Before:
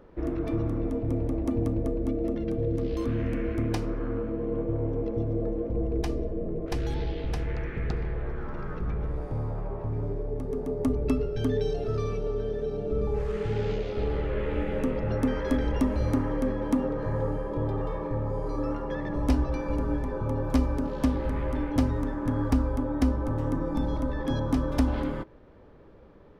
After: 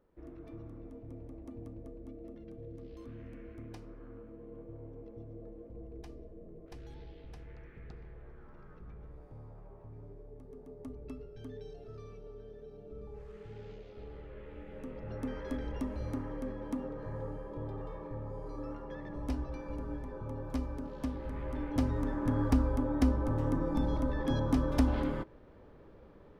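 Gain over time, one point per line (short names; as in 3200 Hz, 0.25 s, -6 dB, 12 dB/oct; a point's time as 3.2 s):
14.61 s -19 dB
15.3 s -11.5 dB
21.2 s -11.5 dB
22.15 s -3 dB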